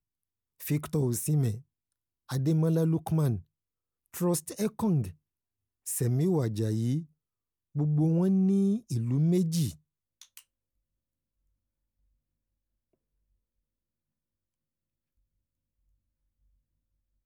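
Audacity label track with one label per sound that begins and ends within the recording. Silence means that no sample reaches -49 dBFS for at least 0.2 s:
0.600000	1.620000	sound
2.290000	3.420000	sound
4.140000	5.130000	sound
5.860000	7.050000	sound
7.750000	9.760000	sound
10.210000	10.410000	sound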